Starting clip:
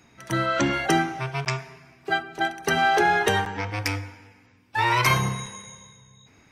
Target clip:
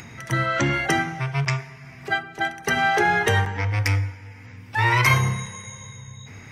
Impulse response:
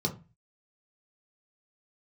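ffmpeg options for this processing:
-filter_complex "[0:a]equalizer=f=100:t=o:w=0.33:g=8,equalizer=f=400:t=o:w=0.33:g=4,equalizer=f=2k:t=o:w=0.33:g=7,acompressor=mode=upward:threshold=-31dB:ratio=2.5,asplit=2[a][b];[1:a]atrim=start_sample=2205,lowshelf=f=170:g=7.5[c];[b][c]afir=irnorm=-1:irlink=0,volume=-21.5dB[d];[a][d]amix=inputs=2:normalize=0"

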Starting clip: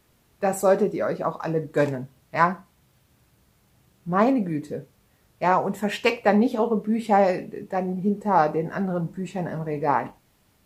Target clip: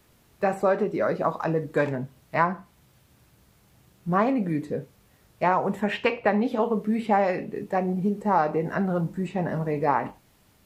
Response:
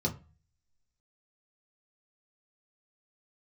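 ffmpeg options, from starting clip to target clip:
-filter_complex "[0:a]acrossover=split=1000|3300[a][b][c];[a]acompressor=threshold=-24dB:ratio=4[d];[b]acompressor=threshold=-27dB:ratio=4[e];[c]acompressor=threshold=-60dB:ratio=4[f];[d][e][f]amix=inputs=3:normalize=0,volume=2.5dB"

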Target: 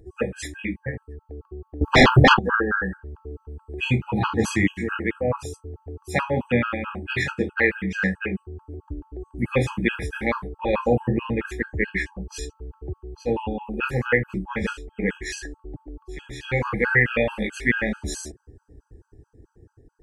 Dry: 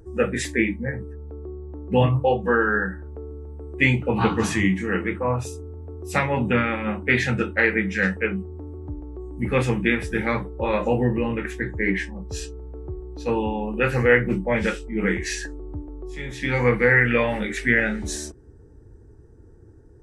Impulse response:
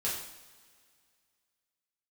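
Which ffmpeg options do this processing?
-filter_complex "[0:a]dynaudnorm=f=660:g=5:m=6dB,asettb=1/sr,asplit=3[a][b][c];[a]atrim=end=1.814[d];[b]atrim=start=1.81:end=2.39,asetpts=PTS-STARTPTS,afade=t=in:d=0.004:c=qsin,afade=t=out:st=0.576:d=0.004:c=qsin,aeval=exprs='0.596*sin(PI/2*5.01*val(0)/0.596)':c=same[e];[c]atrim=start=2.386[f];[d][e]acrossfade=d=0.004:c1=hsin:c2=qsin[g];[g][f]acrossfade=d=0.004:c1=qsin:c2=hsin,afftfilt=real='re*gt(sin(2*PI*4.6*pts/sr)*(1-2*mod(floor(b*sr/1024/830),2)),0)':imag='im*gt(sin(2*PI*4.6*pts/sr)*(1-2*mod(floor(b*sr/1024/830),2)),0)':win_size=1024:overlap=0.75,volume=-1.5dB"

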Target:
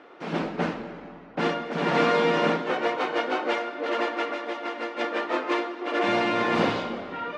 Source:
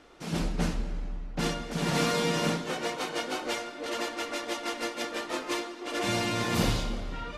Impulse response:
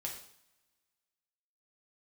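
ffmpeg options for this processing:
-filter_complex "[0:a]asettb=1/sr,asplit=3[a][b][c];[a]atrim=end=4.304[d];[b]atrim=start=4.3:end=4.99,asetpts=PTS-STARTPTS,afade=t=in:d=0.004:c=qsin,afade=t=out:st=0.686:d=0.004:c=qsin,acompressor=threshold=-35dB:ratio=4[e];[c]atrim=start=4.986[f];[d][e]acrossfade=d=0.004:c1=hsin:c2=qsin[g];[g][f]acrossfade=d=0.004:c1=qsin:c2=hsin,highpass=290,lowpass=2.2k,volume=8dB"

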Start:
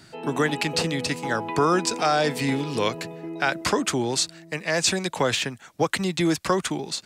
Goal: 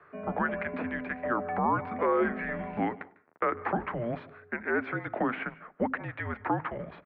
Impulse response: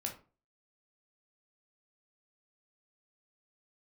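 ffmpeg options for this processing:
-filter_complex "[0:a]bandreject=f=50:t=h:w=6,bandreject=f=100:t=h:w=6,bandreject=f=150:t=h:w=6,bandreject=f=200:t=h:w=6,bandreject=f=250:t=h:w=6,bandreject=f=300:t=h:w=6,bandreject=f=350:t=h:w=6,bandreject=f=400:t=h:w=6,bandreject=f=450:t=h:w=6,bandreject=f=500:t=h:w=6,alimiter=limit=-15.5dB:level=0:latency=1:release=82,afreqshift=-88,asplit=3[a][b][c];[a]afade=t=out:st=2.94:d=0.02[d];[b]acrusher=bits=3:mix=0:aa=0.5,afade=t=in:st=2.94:d=0.02,afade=t=out:st=3.41:d=0.02[e];[c]afade=t=in:st=3.41:d=0.02[f];[d][e][f]amix=inputs=3:normalize=0,asplit=2[g][h];[h]adelay=99.13,volume=-28dB,highshelf=f=4k:g=-2.23[i];[g][i]amix=inputs=2:normalize=0,asplit=2[j][k];[1:a]atrim=start_sample=2205,adelay=149[l];[k][l]afir=irnorm=-1:irlink=0,volume=-19.5dB[m];[j][m]amix=inputs=2:normalize=0,highpass=f=370:t=q:w=0.5412,highpass=f=370:t=q:w=1.307,lowpass=f=2.1k:t=q:w=0.5176,lowpass=f=2.1k:t=q:w=0.7071,lowpass=f=2.1k:t=q:w=1.932,afreqshift=-150"

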